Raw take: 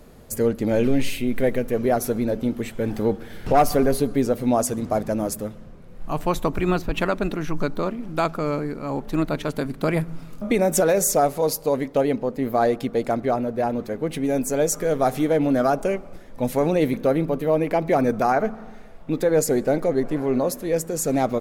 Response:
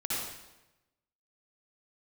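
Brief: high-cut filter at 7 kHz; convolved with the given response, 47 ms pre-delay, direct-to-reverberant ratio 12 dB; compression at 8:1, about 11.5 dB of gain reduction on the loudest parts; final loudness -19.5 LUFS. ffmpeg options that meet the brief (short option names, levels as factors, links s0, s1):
-filter_complex "[0:a]lowpass=7000,acompressor=threshold=0.0562:ratio=8,asplit=2[s0][s1];[1:a]atrim=start_sample=2205,adelay=47[s2];[s1][s2]afir=irnorm=-1:irlink=0,volume=0.126[s3];[s0][s3]amix=inputs=2:normalize=0,volume=3.35"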